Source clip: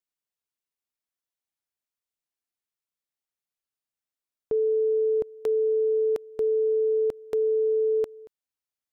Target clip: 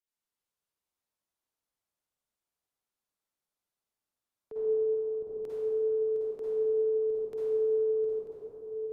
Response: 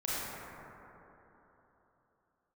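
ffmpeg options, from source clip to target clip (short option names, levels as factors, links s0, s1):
-filter_complex "[0:a]acrossover=split=120|520[s0][s1][s2];[s2]acompressor=threshold=0.00708:ratio=5[s3];[s0][s1][s3]amix=inputs=3:normalize=0,alimiter=level_in=2.24:limit=0.0631:level=0:latency=1:release=49,volume=0.447[s4];[1:a]atrim=start_sample=2205,asetrate=29988,aresample=44100[s5];[s4][s5]afir=irnorm=-1:irlink=0,volume=0.531"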